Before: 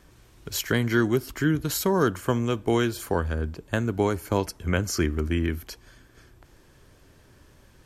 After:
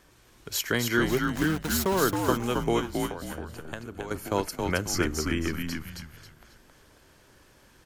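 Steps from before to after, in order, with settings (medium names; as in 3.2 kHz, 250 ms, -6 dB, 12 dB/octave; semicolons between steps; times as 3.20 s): bass shelf 270 Hz -8.5 dB; 1.08–2.03 s: small samples zeroed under -31 dBFS; 2.79–4.11 s: compression 10:1, threshold -34 dBFS, peak gain reduction 13.5 dB; frequency-shifting echo 270 ms, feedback 33%, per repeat -78 Hz, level -3.5 dB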